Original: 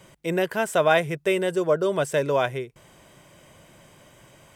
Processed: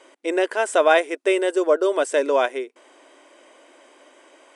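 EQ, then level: treble shelf 3.8 kHz -7 dB; dynamic bell 8.4 kHz, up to +6 dB, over -52 dBFS, Q 0.74; brick-wall FIR band-pass 250–11000 Hz; +3.5 dB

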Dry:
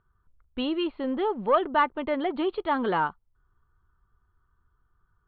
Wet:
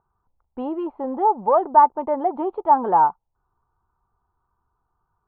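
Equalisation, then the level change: resonant low-pass 850 Hz, resonance Q 5.4; bass shelf 91 Hz -9.5 dB; 0.0 dB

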